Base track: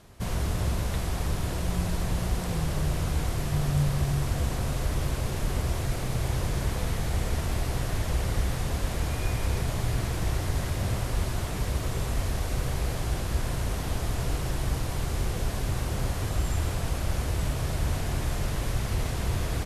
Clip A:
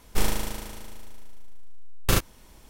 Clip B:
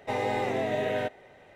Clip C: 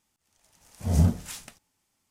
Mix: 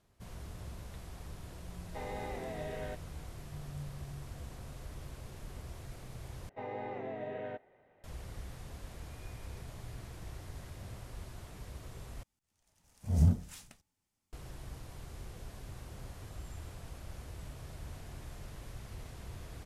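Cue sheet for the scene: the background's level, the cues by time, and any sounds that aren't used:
base track −18 dB
0:01.87: mix in B −13 dB + parametric band 2,800 Hz −2.5 dB 0.44 octaves
0:06.49: overwrite with B −11.5 dB + Bessel low-pass filter 1,700 Hz
0:12.23: overwrite with C −11.5 dB + low-shelf EQ 200 Hz +9 dB
not used: A

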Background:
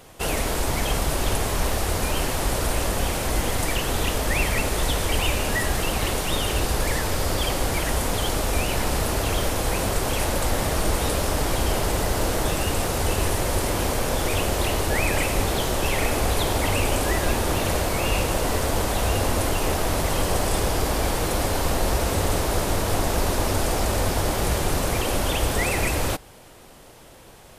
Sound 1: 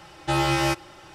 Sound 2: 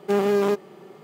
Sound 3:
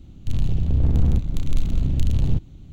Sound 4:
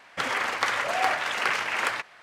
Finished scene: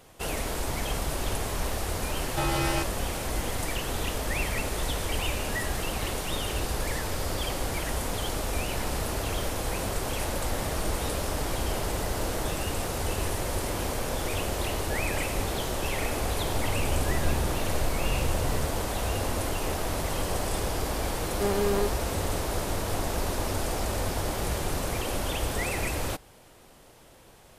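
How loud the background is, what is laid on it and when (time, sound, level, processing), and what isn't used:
background −6.5 dB
0:02.09: mix in 1 −4.5 dB + brickwall limiter −16 dBFS
0:16.28: mix in 3 −13.5 dB + peak hold with a rise ahead of every peak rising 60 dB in 0.91 s
0:21.32: mix in 2 −6.5 dB
not used: 4

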